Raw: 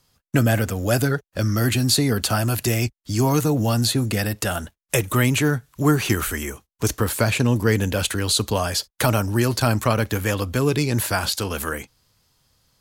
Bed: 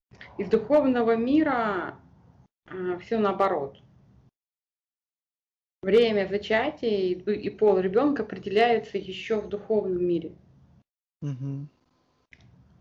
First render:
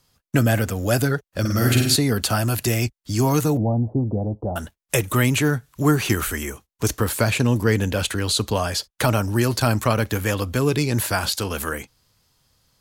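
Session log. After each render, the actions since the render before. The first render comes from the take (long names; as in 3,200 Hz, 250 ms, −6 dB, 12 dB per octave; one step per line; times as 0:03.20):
0:01.40–0:01.96: flutter between parallel walls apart 8.6 metres, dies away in 0.75 s
0:03.57–0:04.56: Butterworth low-pass 880 Hz 48 dB per octave
0:07.64–0:09.23: high-shelf EQ 7,900 Hz −5 dB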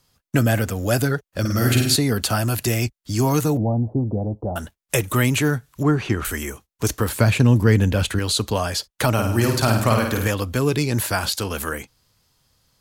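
0:05.83–0:06.25: head-to-tape spacing loss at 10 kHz 20 dB
0:07.09–0:08.19: bass and treble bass +6 dB, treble −3 dB
0:09.13–0:10.28: flutter between parallel walls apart 9 metres, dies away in 0.68 s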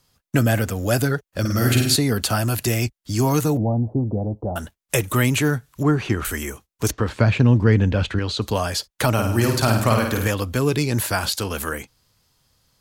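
0:06.91–0:08.42: high-frequency loss of the air 150 metres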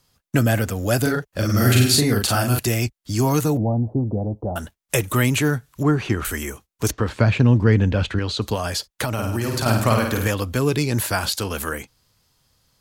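0:01.01–0:02.59: double-tracking delay 40 ms −2.5 dB
0:08.54–0:09.66: downward compressor, threshold −19 dBFS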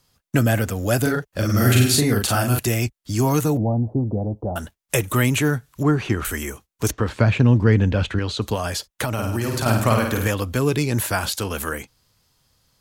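dynamic equaliser 4,600 Hz, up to −4 dB, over −42 dBFS, Q 3.4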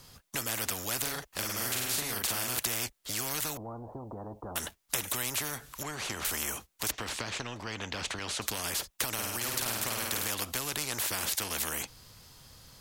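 downward compressor 3 to 1, threshold −19 dBFS, peak gain reduction 7.5 dB
every bin compressed towards the loudest bin 4 to 1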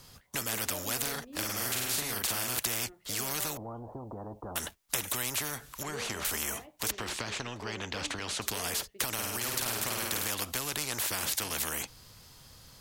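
mix in bed −25 dB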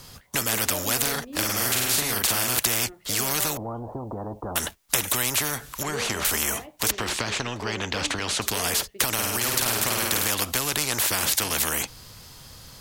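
level +8.5 dB
brickwall limiter −1 dBFS, peak gain reduction 2.5 dB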